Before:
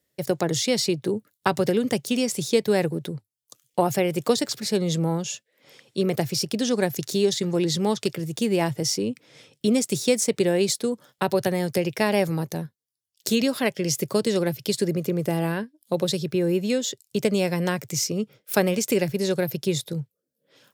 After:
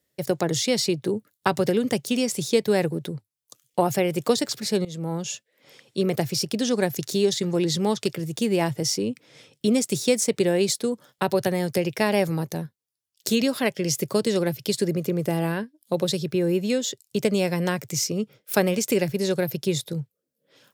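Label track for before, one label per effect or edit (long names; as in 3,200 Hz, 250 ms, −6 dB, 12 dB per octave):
4.850000	5.300000	fade in, from −17.5 dB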